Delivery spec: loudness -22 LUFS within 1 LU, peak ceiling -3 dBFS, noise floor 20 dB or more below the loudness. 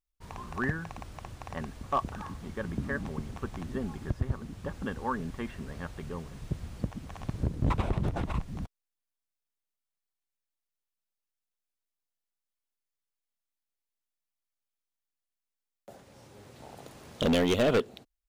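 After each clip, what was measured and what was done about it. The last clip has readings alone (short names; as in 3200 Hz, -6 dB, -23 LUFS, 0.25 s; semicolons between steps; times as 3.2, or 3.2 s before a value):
clipped 0.6%; flat tops at -20.5 dBFS; loudness -33.0 LUFS; peak -20.5 dBFS; loudness target -22.0 LUFS
-> clip repair -20.5 dBFS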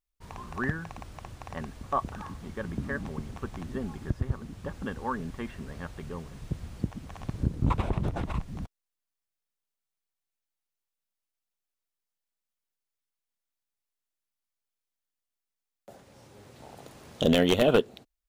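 clipped 0.0%; loudness -31.5 LUFS; peak -11.5 dBFS; loudness target -22.0 LUFS
-> gain +9.5 dB; limiter -3 dBFS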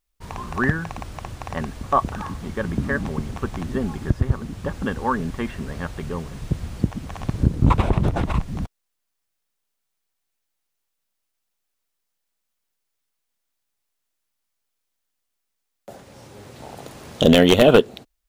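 loudness -22.5 LUFS; peak -3.0 dBFS; noise floor -78 dBFS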